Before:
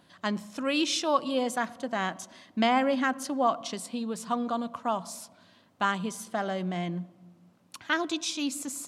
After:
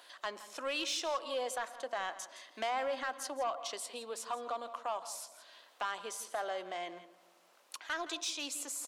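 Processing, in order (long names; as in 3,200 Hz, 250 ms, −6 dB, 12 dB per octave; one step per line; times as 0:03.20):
high-pass filter 430 Hz 24 dB per octave
in parallel at 0 dB: brickwall limiter −20.5 dBFS, peak gain reduction 7 dB
on the sum: downward compressor 1.5 to 1, threshold −29 dBFS, peak gain reduction 5 dB
soft clipping −19.5 dBFS, distortion −17 dB
on a send: single-tap delay 166 ms −15.5 dB
on the sum: one half of a high-frequency compander encoder only
level −7.5 dB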